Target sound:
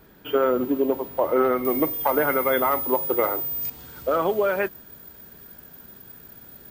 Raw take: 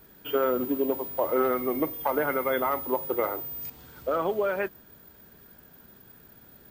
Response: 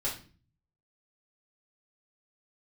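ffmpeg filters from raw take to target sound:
-af "asetnsamples=nb_out_samples=441:pad=0,asendcmd='1.65 highshelf g 4',highshelf=frequency=4800:gain=-8.5,volume=4.5dB"

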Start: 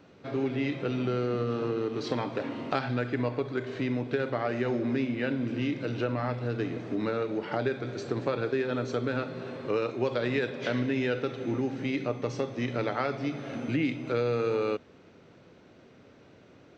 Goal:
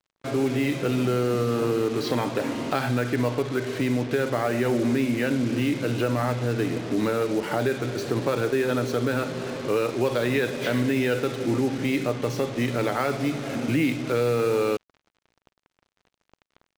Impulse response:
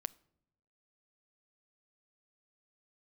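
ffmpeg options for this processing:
-filter_complex "[0:a]asplit=2[link_01][link_02];[link_02]alimiter=limit=-23.5dB:level=0:latency=1:release=27,volume=1.5dB[link_03];[link_01][link_03]amix=inputs=2:normalize=0,acrusher=bits=5:mix=0:aa=0.5"

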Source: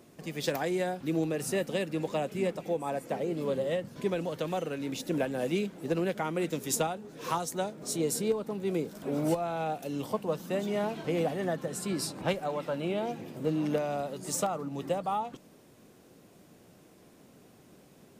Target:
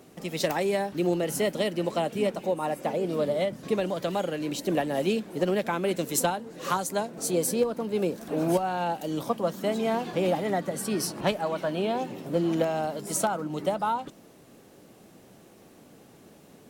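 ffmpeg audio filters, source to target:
ffmpeg -i in.wav -af "asetrate=48069,aresample=44100,volume=4dB" out.wav

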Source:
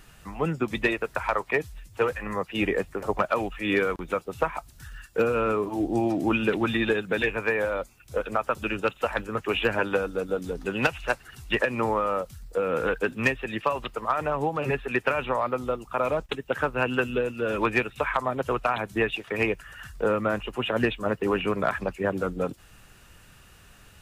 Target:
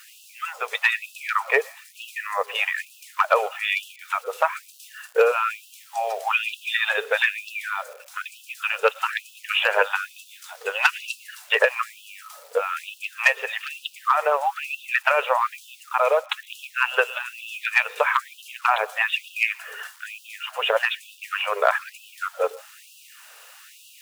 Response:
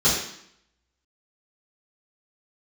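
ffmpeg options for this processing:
-filter_complex "[0:a]acrusher=bits=8:mix=0:aa=0.000001,asplit=2[link_01][link_02];[1:a]atrim=start_sample=2205,adelay=108[link_03];[link_02][link_03]afir=irnorm=-1:irlink=0,volume=-38dB[link_04];[link_01][link_04]amix=inputs=2:normalize=0,afftfilt=real='re*gte(b*sr/1024,400*pow(2600/400,0.5+0.5*sin(2*PI*1.1*pts/sr)))':imag='im*gte(b*sr/1024,400*pow(2600/400,0.5+0.5*sin(2*PI*1.1*pts/sr)))':win_size=1024:overlap=0.75,volume=7dB"

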